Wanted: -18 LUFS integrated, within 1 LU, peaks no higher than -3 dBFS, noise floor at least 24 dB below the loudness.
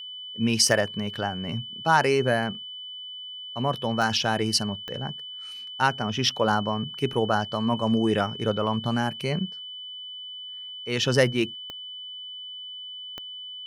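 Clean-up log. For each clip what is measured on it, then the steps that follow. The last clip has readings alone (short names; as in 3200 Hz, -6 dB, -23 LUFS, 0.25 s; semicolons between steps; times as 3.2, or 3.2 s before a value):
clicks 5; steady tone 3000 Hz; tone level -36 dBFS; loudness -26.5 LUFS; peak -6.5 dBFS; loudness target -18.0 LUFS
-> de-click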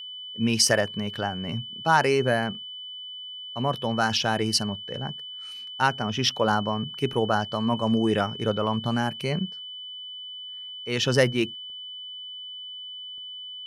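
clicks 0; steady tone 3000 Hz; tone level -36 dBFS
-> notch 3000 Hz, Q 30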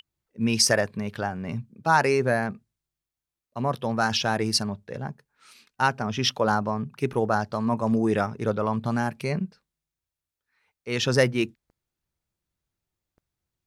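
steady tone none; loudness -25.5 LUFS; peak -7.0 dBFS; loudness target -18.0 LUFS
-> gain +7.5 dB; limiter -3 dBFS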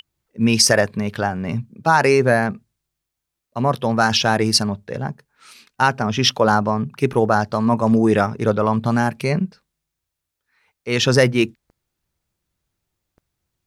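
loudness -18.5 LUFS; peak -3.0 dBFS; noise floor -82 dBFS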